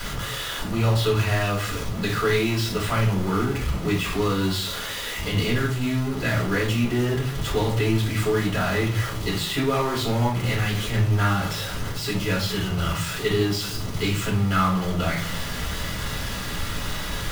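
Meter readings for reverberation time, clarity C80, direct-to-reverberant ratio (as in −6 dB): 0.50 s, 12.0 dB, −4.0 dB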